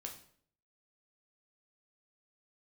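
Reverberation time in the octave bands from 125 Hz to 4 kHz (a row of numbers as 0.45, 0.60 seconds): 0.80, 0.65, 0.65, 0.55, 0.50, 0.45 seconds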